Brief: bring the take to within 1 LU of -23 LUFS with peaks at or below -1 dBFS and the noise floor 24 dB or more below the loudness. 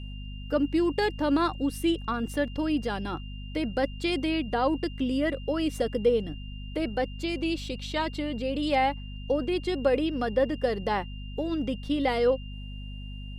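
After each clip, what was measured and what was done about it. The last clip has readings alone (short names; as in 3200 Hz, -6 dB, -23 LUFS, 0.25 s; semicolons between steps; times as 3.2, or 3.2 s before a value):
hum 50 Hz; harmonics up to 250 Hz; hum level -36 dBFS; steady tone 2800 Hz; tone level -48 dBFS; loudness -28.5 LUFS; peak -12.5 dBFS; loudness target -23.0 LUFS
-> de-hum 50 Hz, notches 5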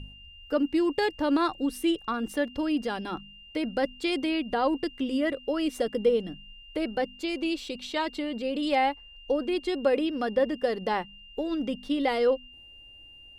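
hum none; steady tone 2800 Hz; tone level -48 dBFS
-> notch 2800 Hz, Q 30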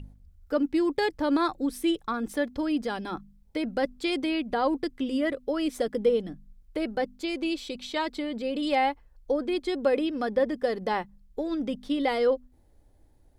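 steady tone none; loudness -28.5 LUFS; peak -13.0 dBFS; loudness target -23.0 LUFS
-> gain +5.5 dB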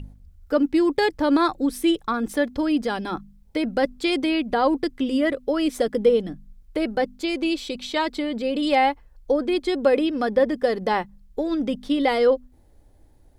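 loudness -23.0 LUFS; peak -7.5 dBFS; noise floor -54 dBFS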